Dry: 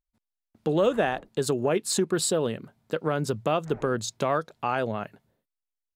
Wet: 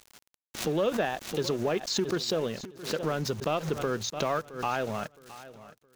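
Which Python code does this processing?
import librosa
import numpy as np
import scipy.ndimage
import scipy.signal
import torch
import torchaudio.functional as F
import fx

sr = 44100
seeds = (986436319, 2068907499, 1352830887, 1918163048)

p1 = x + 0.5 * 10.0 ** (-33.0 / 20.0) * np.sign(x)
p2 = scipy.signal.sosfilt(scipy.signal.ellip(4, 1.0, 40, 6300.0, 'lowpass', fs=sr, output='sos'), p1)
p3 = fx.high_shelf(p2, sr, hz=2400.0, db=3.0)
p4 = fx.level_steps(p3, sr, step_db=18)
p5 = p3 + (p4 * 10.0 ** (-2.0 / 20.0))
p6 = fx.transient(p5, sr, attack_db=1, sustain_db=-8)
p7 = np.where(np.abs(p6) >= 10.0 ** (-36.5 / 20.0), p6, 0.0)
p8 = fx.echo_feedback(p7, sr, ms=667, feedback_pct=34, wet_db=-17)
p9 = fx.pre_swell(p8, sr, db_per_s=120.0)
y = p9 * 10.0 ** (-6.0 / 20.0)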